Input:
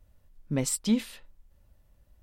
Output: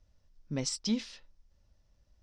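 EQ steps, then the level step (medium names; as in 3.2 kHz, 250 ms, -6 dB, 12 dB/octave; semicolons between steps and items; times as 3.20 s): four-pole ladder low-pass 6.1 kHz, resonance 65%; +5.0 dB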